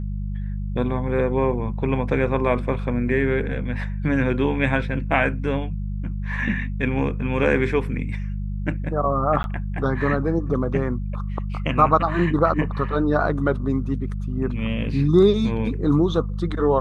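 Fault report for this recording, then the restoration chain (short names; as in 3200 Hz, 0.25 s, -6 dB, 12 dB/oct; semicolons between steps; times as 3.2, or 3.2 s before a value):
hum 50 Hz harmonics 4 -27 dBFS
9.43–9.44 gap 11 ms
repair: de-hum 50 Hz, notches 4; interpolate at 9.43, 11 ms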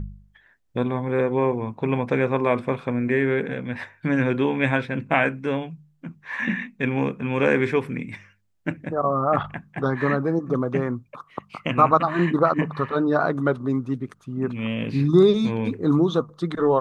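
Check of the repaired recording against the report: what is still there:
none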